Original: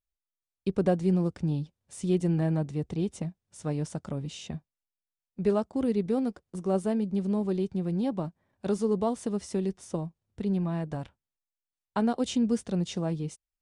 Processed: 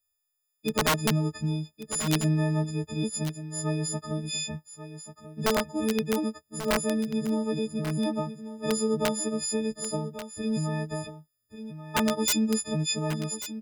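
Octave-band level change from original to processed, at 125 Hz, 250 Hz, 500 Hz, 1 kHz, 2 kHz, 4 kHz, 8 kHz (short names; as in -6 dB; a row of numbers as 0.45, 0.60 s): +1.0, 0.0, -0.5, +4.0, +12.0, +12.0, +14.0 dB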